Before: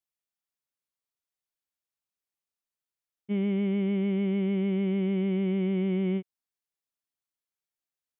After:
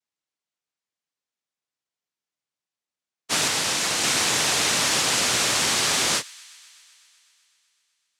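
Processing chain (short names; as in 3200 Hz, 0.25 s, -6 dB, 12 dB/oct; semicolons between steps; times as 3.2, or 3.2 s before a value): 3.47–4.03 minimum comb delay 2.4 ms; noise vocoder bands 1; thin delay 0.126 s, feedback 77%, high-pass 1800 Hz, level -23 dB; gain +4.5 dB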